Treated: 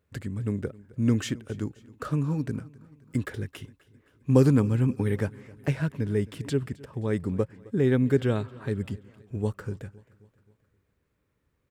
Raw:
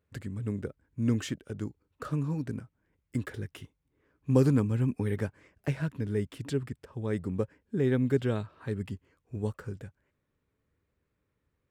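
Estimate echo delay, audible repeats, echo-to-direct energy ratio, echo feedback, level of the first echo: 264 ms, 3, −20.5 dB, 54%, −22.0 dB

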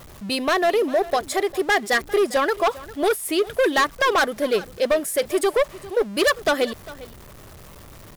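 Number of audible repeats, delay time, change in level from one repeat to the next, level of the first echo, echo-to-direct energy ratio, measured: 1, 401 ms, repeats not evenly spaced, −18.5 dB, −18.5 dB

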